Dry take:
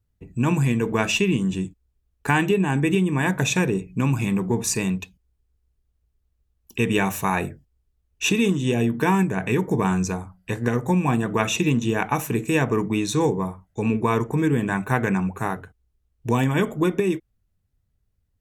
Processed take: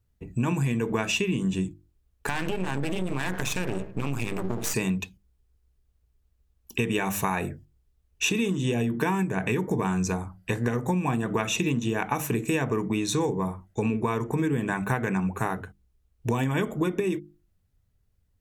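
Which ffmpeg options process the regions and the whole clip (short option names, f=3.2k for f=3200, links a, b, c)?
-filter_complex "[0:a]asettb=1/sr,asplit=3[a][b][c];[a]atrim=end=2.284[d];[b]atrim=start=2.28:end=4.74,asetpts=PTS-STARTPTS,afade=t=in:d=0.004:c=qsin,afade=t=out:st=2.456:d=0.004:c=qsin,bandreject=f=65.68:t=h:w=4,bandreject=f=131.36:t=h:w=4,bandreject=f=197.04:t=h:w=4,bandreject=f=262.72:t=h:w=4,bandreject=f=328.4:t=h:w=4,bandreject=f=394.08:t=h:w=4,bandreject=f=459.76:t=h:w=4,bandreject=f=525.44:t=h:w=4,bandreject=f=591.12:t=h:w=4,bandreject=f=656.8:t=h:w=4,bandreject=f=722.48:t=h:w=4,bandreject=f=788.16:t=h:w=4,bandreject=f=853.84:t=h:w=4,bandreject=f=919.52:t=h:w=4,bandreject=f=985.2:t=h:w=4,bandreject=f=1.05088k:t=h:w=4,bandreject=f=1.11656k:t=h:w=4,bandreject=f=1.18224k:t=h:w=4,bandreject=f=1.24792k:t=h:w=4,bandreject=f=1.3136k:t=h:w=4,bandreject=f=1.37928k:t=h:w=4,bandreject=f=1.44496k:t=h:w=4,bandreject=f=1.51064k:t=h:w=4,bandreject=f=1.57632k:t=h:w=4,bandreject=f=1.642k:t=h:w=4,bandreject=f=1.70768k:t=h:w=4,bandreject=f=1.77336k:t=h:w=4,bandreject=f=1.83904k:t=h:w=4,acompressor=threshold=-21dB:ratio=6:attack=3.2:release=140:knee=1:detection=peak,aeval=exprs='max(val(0),0)':c=same[e];[c]atrim=start=4.736[f];[d][e]acrossfade=d=0.004:c1=hsin:c2=qsin[g];[g][f]acrossfade=d=0.004:c1=qsin:c2=hsin,bandreject=f=50:t=h:w=6,bandreject=f=100:t=h:w=6,bandreject=f=150:t=h:w=6,bandreject=f=200:t=h:w=6,bandreject=f=250:t=h:w=6,bandreject=f=300:t=h:w=6,bandreject=f=350:t=h:w=6,acompressor=threshold=-25dB:ratio=6,volume=2.5dB"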